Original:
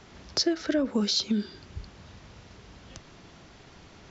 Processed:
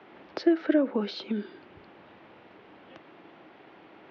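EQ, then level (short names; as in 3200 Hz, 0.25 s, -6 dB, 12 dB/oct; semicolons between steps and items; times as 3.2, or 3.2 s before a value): speaker cabinet 270–2900 Hz, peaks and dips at 320 Hz +7 dB, 540 Hz +3 dB, 810 Hz +4 dB; 0.0 dB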